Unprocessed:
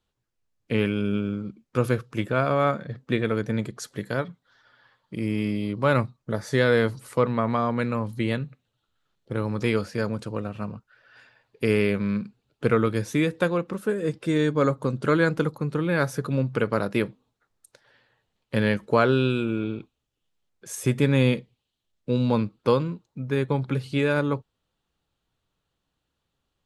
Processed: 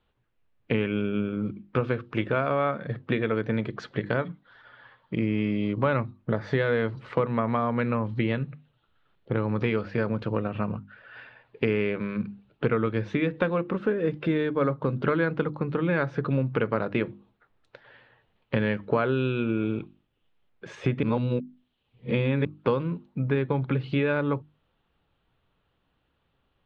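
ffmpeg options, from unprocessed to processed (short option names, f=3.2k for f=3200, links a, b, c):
-filter_complex "[0:a]asettb=1/sr,asplit=3[a][b][c];[a]atrim=end=1.814[d];[b]atrim=start=1.81:end=3.75,asetpts=PTS-STARTPTS,afade=t=in:d=0.004:c=qsin,afade=t=out:st=1.936:d=0.004:c=qsin,bass=f=250:g=-3,treble=f=4k:g=3[e];[c]atrim=start=3.746[f];[d][e]acrossfade=d=0.004:c1=hsin:c2=qsin[g];[g][f]acrossfade=d=0.004:c1=qsin:c2=hsin,asplit=3[h][i][j];[h]atrim=end=21.032[k];[i]atrim=start=21.028:end=22.452,asetpts=PTS-STARTPTS,areverse[l];[j]atrim=start=22.448[m];[k][l]acrossfade=d=0.004:c1=hsin:c2=hsin[n];[n][m]acrossfade=d=0.004:c1=hsin:c2=hsin,acompressor=threshold=-30dB:ratio=4,lowpass=f=3.2k:w=0.5412,lowpass=f=3.2k:w=1.3066,bandreject=f=50:t=h:w=6,bandreject=f=100:t=h:w=6,bandreject=f=150:t=h:w=6,bandreject=f=200:t=h:w=6,bandreject=f=250:t=h:w=6,bandreject=f=300:t=h:w=6,bandreject=f=350:t=h:w=6,volume=7.5dB"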